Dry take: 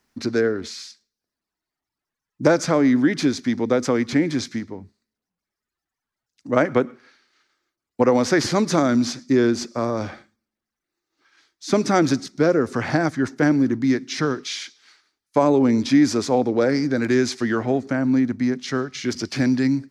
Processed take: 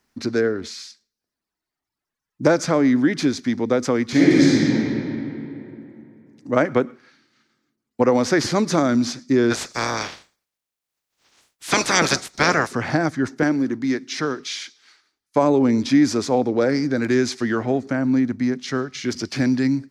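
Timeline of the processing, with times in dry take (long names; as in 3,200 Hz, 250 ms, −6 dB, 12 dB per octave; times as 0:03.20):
0:04.09–0:04.73: thrown reverb, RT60 3 s, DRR −7.5 dB
0:09.50–0:12.71: ceiling on every frequency bin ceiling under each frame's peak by 27 dB
0:13.43–0:14.40: high-pass filter 250 Hz 6 dB per octave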